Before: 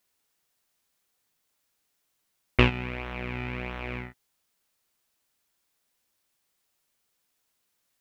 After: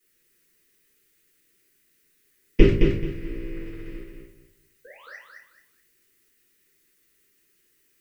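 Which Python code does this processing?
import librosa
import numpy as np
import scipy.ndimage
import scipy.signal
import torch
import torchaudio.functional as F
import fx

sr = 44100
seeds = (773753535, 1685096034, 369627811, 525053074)

p1 = fx.rattle_buzz(x, sr, strikes_db=-25.0, level_db=-9.0)
p2 = fx.peak_eq(p1, sr, hz=130.0, db=8.0, octaves=2.3)
p3 = p2 * np.sin(2.0 * np.pi * 270.0 * np.arange(len(p2)) / sr)
p4 = fx.over_compress(p3, sr, threshold_db=-27.0, ratio=-0.5)
p5 = p3 + (p4 * 10.0 ** (3.0 / 20.0))
p6 = fx.spec_paint(p5, sr, seeds[0], shape='rise', start_s=4.84, length_s=0.32, low_hz=490.0, high_hz=2100.0, level_db=-16.0)
p7 = fx.power_curve(p6, sr, exponent=3.0)
p8 = fx.dmg_noise_colour(p7, sr, seeds[1], colour='blue', level_db=-61.0)
p9 = fx.curve_eq(p8, sr, hz=(100.0, 190.0, 390.0, 710.0, 1900.0, 3600.0), db=(0, -5, -1, -29, -9, -19))
p10 = p9 + fx.echo_feedback(p9, sr, ms=217, feedback_pct=24, wet_db=-5.0, dry=0)
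p11 = fx.room_shoebox(p10, sr, seeds[2], volume_m3=38.0, walls='mixed', distance_m=1.9)
y = p11 * 10.0 ** (3.0 / 20.0)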